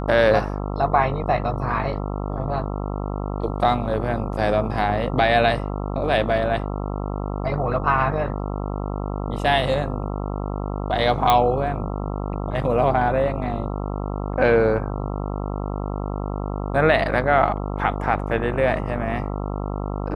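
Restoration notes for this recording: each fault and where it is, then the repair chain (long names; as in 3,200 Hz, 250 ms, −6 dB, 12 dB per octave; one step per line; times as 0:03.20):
mains buzz 50 Hz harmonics 27 −27 dBFS
0:11.30: click −4 dBFS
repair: click removal
hum removal 50 Hz, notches 27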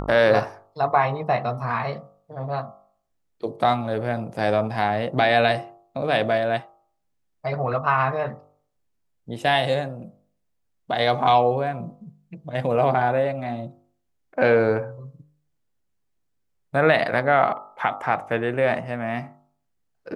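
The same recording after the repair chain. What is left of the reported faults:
none of them is left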